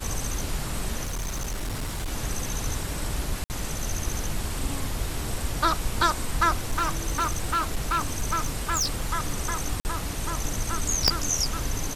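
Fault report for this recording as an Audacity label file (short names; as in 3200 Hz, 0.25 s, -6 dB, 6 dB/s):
1.040000	2.100000	clipped -26.5 dBFS
3.440000	3.500000	gap 59 ms
6.710000	9.110000	clipped -20.5 dBFS
9.800000	9.850000	gap 49 ms
11.080000	11.080000	pop -4 dBFS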